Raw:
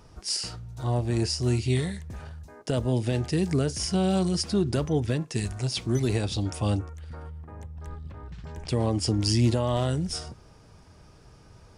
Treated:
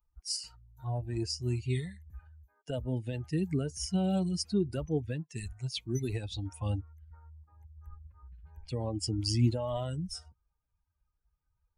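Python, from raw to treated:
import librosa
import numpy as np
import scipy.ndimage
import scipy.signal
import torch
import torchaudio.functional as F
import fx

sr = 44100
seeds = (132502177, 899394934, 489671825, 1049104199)

y = fx.bin_expand(x, sr, power=2.0)
y = fx.dynamic_eq(y, sr, hz=1200.0, q=0.97, threshold_db=-46.0, ratio=4.0, max_db=-5)
y = y * 10.0 ** (-2.0 / 20.0)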